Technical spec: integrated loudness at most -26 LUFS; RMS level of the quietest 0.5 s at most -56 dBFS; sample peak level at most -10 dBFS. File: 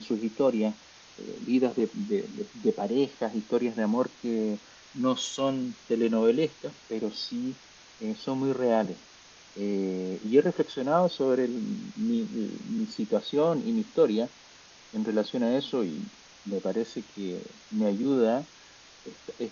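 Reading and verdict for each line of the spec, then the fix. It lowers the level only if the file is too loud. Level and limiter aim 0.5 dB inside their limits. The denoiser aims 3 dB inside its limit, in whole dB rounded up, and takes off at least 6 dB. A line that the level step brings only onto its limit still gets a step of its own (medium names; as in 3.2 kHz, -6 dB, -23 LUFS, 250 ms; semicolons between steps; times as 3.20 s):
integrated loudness -29.0 LUFS: pass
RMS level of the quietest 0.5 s -53 dBFS: fail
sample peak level -9.5 dBFS: fail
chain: noise reduction 6 dB, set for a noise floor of -53 dBFS; peak limiter -10.5 dBFS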